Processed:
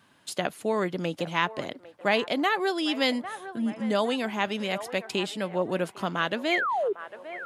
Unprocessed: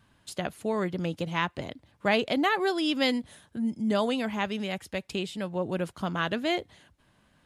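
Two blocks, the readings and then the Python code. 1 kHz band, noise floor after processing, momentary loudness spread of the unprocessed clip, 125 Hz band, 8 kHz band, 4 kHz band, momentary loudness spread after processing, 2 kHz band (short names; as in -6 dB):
+3.0 dB, -58 dBFS, 9 LU, -2.0 dB, +3.5 dB, +2.0 dB, 7 LU, +3.0 dB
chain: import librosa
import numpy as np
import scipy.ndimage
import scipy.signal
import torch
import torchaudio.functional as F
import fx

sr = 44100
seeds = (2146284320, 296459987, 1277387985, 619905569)

p1 = scipy.signal.sosfilt(scipy.signal.bessel(2, 240.0, 'highpass', norm='mag', fs=sr, output='sos'), x)
p2 = fx.spec_paint(p1, sr, seeds[0], shape='fall', start_s=6.51, length_s=0.42, low_hz=370.0, high_hz=2500.0, level_db=-28.0)
p3 = fx.echo_wet_bandpass(p2, sr, ms=802, feedback_pct=46, hz=940.0, wet_db=-13.5)
p4 = fx.rider(p3, sr, range_db=5, speed_s=0.5)
p5 = p3 + F.gain(torch.from_numpy(p4), -0.5).numpy()
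y = F.gain(torch.from_numpy(p5), -3.5).numpy()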